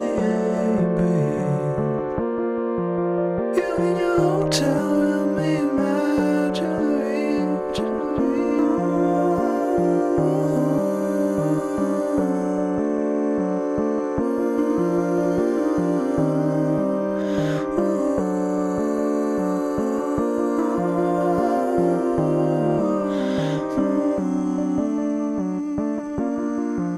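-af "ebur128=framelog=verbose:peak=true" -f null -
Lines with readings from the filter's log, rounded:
Integrated loudness:
  I:         -21.8 LUFS
  Threshold: -31.8 LUFS
Loudness range:
  LRA:         1.9 LU
  Threshold: -41.7 LUFS
  LRA low:   -22.5 LUFS
  LRA high:  -20.7 LUFS
True peak:
  Peak:       -7.5 dBFS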